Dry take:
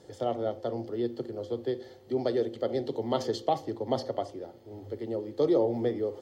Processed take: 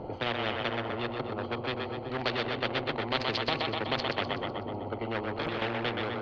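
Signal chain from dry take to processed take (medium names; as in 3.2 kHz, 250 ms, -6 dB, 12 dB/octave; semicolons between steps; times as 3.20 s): local Wiener filter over 25 samples; low-pass 3.4 kHz 24 dB/octave; 5.01–5.62 s: compressor with a negative ratio -31 dBFS, ratio -1; two-band feedback delay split 360 Hz, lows 387 ms, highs 125 ms, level -7 dB; spectrum-flattening compressor 4:1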